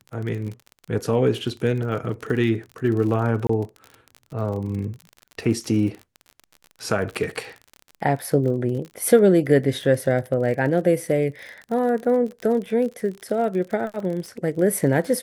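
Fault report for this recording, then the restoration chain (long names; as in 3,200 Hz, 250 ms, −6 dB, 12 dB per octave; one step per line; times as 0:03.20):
surface crackle 36 per second −30 dBFS
0:03.47–0:03.49: drop-out 24 ms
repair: click removal
repair the gap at 0:03.47, 24 ms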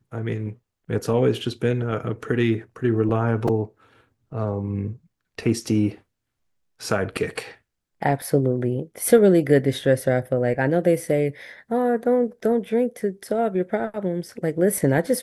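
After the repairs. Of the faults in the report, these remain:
none of them is left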